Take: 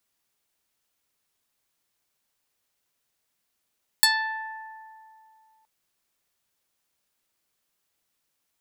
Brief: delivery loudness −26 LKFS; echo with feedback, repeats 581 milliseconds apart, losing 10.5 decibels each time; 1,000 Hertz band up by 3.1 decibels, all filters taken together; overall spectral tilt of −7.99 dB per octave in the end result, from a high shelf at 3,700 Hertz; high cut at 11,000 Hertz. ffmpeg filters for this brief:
ffmpeg -i in.wav -af "lowpass=11000,equalizer=frequency=1000:width_type=o:gain=4,highshelf=frequency=3700:gain=-8.5,aecho=1:1:581|1162|1743:0.299|0.0896|0.0269,volume=2.5dB" out.wav

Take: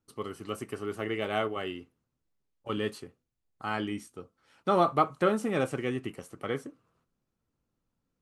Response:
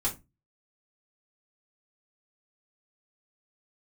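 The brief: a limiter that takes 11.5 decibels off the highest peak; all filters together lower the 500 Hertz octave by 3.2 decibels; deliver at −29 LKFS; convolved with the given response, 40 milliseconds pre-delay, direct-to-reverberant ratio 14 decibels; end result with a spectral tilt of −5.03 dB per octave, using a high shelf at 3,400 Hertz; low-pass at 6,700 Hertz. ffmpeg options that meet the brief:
-filter_complex "[0:a]lowpass=6700,equalizer=frequency=500:width_type=o:gain=-4,highshelf=frequency=3400:gain=-6.5,alimiter=limit=-24dB:level=0:latency=1,asplit=2[link_01][link_02];[1:a]atrim=start_sample=2205,adelay=40[link_03];[link_02][link_03]afir=irnorm=-1:irlink=0,volume=-20dB[link_04];[link_01][link_04]amix=inputs=2:normalize=0,volume=8dB"

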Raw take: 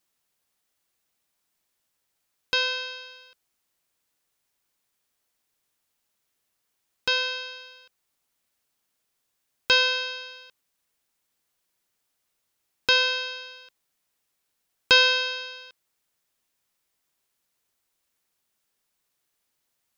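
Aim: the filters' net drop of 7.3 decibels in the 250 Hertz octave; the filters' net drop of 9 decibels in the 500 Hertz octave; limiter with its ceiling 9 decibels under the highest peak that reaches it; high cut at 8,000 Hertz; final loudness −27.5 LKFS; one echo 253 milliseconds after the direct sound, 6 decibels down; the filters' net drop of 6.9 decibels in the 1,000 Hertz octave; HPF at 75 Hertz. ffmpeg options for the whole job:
ffmpeg -i in.wav -af "highpass=75,lowpass=8000,equalizer=frequency=250:width_type=o:gain=-7.5,equalizer=frequency=500:width_type=o:gain=-6.5,equalizer=frequency=1000:width_type=o:gain=-5.5,alimiter=limit=-14dB:level=0:latency=1,aecho=1:1:253:0.501,volume=-1.5dB" out.wav

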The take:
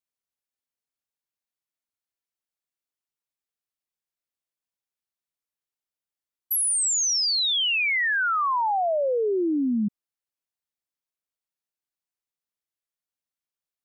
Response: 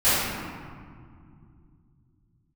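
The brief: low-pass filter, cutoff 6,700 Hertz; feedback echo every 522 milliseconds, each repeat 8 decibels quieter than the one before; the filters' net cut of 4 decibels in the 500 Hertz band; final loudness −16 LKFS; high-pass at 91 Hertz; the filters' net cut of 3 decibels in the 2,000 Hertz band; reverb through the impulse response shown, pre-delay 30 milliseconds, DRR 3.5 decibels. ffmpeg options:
-filter_complex "[0:a]highpass=91,lowpass=6700,equalizer=frequency=500:width_type=o:gain=-5,equalizer=frequency=2000:width_type=o:gain=-3.5,aecho=1:1:522|1044|1566|2088|2610:0.398|0.159|0.0637|0.0255|0.0102,asplit=2[link_01][link_02];[1:a]atrim=start_sample=2205,adelay=30[link_03];[link_02][link_03]afir=irnorm=-1:irlink=0,volume=-22.5dB[link_04];[link_01][link_04]amix=inputs=2:normalize=0,volume=7.5dB"

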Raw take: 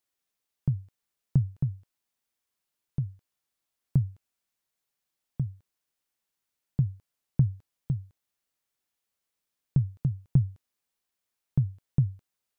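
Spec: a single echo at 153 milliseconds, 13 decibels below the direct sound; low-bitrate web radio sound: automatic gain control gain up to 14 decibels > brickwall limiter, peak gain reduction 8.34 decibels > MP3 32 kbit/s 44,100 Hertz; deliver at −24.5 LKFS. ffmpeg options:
ffmpeg -i in.wav -af "aecho=1:1:153:0.224,dynaudnorm=maxgain=14dB,alimiter=limit=-20dB:level=0:latency=1,volume=10dB" -ar 44100 -c:a libmp3lame -b:a 32k out.mp3

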